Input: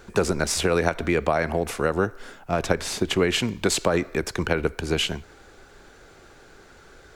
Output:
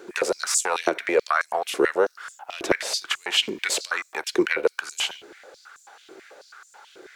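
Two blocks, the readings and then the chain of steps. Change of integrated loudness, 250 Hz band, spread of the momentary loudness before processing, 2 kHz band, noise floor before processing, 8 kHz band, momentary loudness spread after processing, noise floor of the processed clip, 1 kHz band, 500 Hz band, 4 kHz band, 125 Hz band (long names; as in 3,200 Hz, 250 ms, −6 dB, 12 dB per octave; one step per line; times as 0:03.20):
0.0 dB, −4.5 dB, 6 LU, +2.0 dB, −51 dBFS, +2.5 dB, 6 LU, −58 dBFS, +0.5 dB, −1.5 dB, +2.5 dB, −21.0 dB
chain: one-sided soft clipper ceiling −10.5 dBFS
surface crackle 85 per second −51 dBFS
high-pass on a step sequencer 9.2 Hz 350–7,200 Hz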